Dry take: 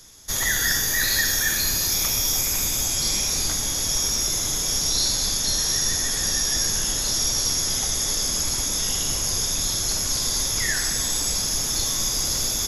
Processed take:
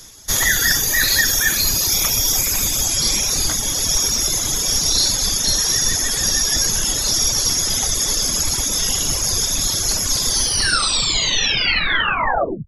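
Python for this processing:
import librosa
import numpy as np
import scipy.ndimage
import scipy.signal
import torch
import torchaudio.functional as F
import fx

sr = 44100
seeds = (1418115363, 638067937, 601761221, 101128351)

y = fx.tape_stop_end(x, sr, length_s=2.39)
y = fx.dereverb_blind(y, sr, rt60_s=1.1)
y = y * librosa.db_to_amplitude(7.5)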